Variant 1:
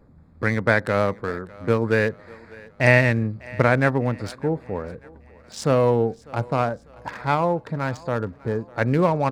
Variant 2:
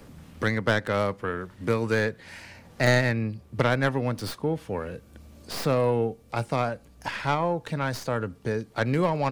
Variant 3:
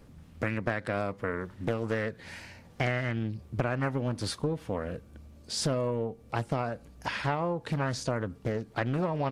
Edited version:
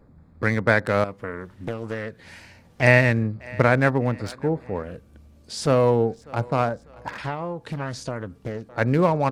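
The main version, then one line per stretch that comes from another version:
1
1.04–2.82 s: from 3
4.83–5.67 s: from 3
7.18–8.69 s: from 3
not used: 2

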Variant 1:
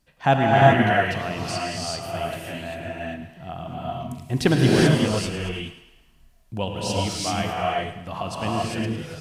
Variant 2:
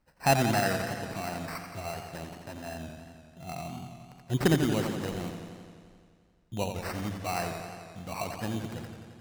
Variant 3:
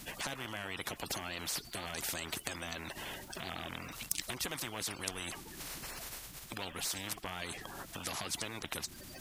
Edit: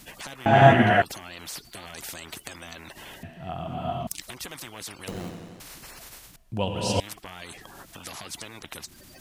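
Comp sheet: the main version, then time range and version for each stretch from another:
3
0.46–1.02 s: from 1
3.23–4.07 s: from 1
5.08–5.60 s: from 2
6.36–7.00 s: from 1

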